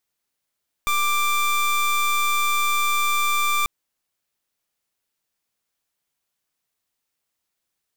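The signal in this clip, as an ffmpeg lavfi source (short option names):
-f lavfi -i "aevalsrc='0.0944*(2*lt(mod(1180*t,1),0.23)-1)':d=2.79:s=44100"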